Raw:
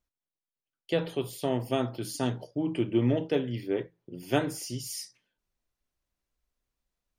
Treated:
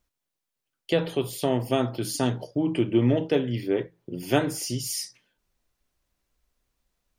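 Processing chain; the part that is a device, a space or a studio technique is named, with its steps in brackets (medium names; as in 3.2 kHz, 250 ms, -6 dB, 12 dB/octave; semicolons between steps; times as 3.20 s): parallel compression (in parallel at -0.5 dB: compression, threshold -37 dBFS, peak gain reduction 16.5 dB); on the sum: trim +2.5 dB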